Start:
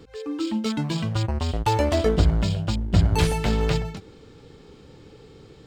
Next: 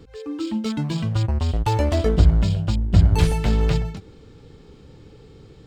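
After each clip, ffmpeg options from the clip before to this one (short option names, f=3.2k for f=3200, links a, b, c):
-af "lowshelf=f=170:g=8,volume=-2dB"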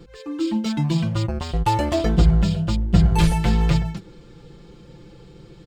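-af "aecho=1:1:5.8:0.79"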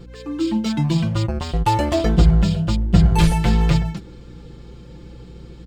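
-af "aeval=exprs='val(0)+0.00794*(sin(2*PI*60*n/s)+sin(2*PI*2*60*n/s)/2+sin(2*PI*3*60*n/s)/3+sin(2*PI*4*60*n/s)/4+sin(2*PI*5*60*n/s)/5)':c=same,volume=2dB"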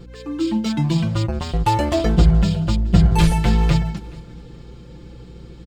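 -af "aecho=1:1:426|852:0.0794|0.0222"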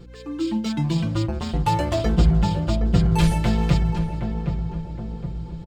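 -filter_complex "[0:a]asplit=2[a][b];[b]adelay=767,lowpass=f=1.1k:p=1,volume=-6dB,asplit=2[c][d];[d]adelay=767,lowpass=f=1.1k:p=1,volume=0.54,asplit=2[e][f];[f]adelay=767,lowpass=f=1.1k:p=1,volume=0.54,asplit=2[g][h];[h]adelay=767,lowpass=f=1.1k:p=1,volume=0.54,asplit=2[i][j];[j]adelay=767,lowpass=f=1.1k:p=1,volume=0.54,asplit=2[k][l];[l]adelay=767,lowpass=f=1.1k:p=1,volume=0.54,asplit=2[m][n];[n]adelay=767,lowpass=f=1.1k:p=1,volume=0.54[o];[a][c][e][g][i][k][m][o]amix=inputs=8:normalize=0,volume=-3.5dB"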